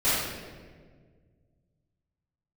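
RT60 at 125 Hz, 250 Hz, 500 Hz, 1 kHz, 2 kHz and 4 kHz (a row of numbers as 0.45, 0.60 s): 2.9, 2.2, 2.0, 1.4, 1.3, 1.0 s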